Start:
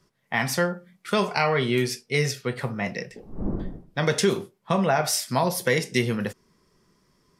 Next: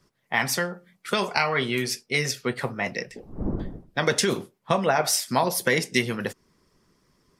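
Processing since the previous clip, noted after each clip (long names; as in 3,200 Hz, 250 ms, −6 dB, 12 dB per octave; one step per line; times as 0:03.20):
harmonic and percussive parts rebalanced percussive +9 dB
level −5.5 dB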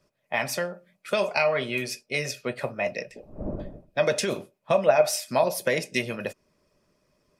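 hollow resonant body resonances 600/2,500 Hz, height 16 dB, ringing for 45 ms
level −5.5 dB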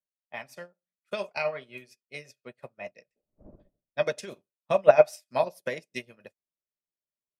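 expander for the loud parts 2.5 to 1, over −43 dBFS
level +4 dB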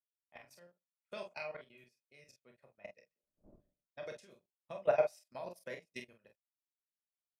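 output level in coarse steps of 18 dB
ambience of single reflections 29 ms −8 dB, 46 ms −7 dB
level −7 dB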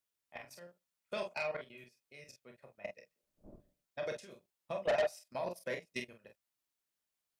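soft clipping −34 dBFS, distortion −4 dB
level +7 dB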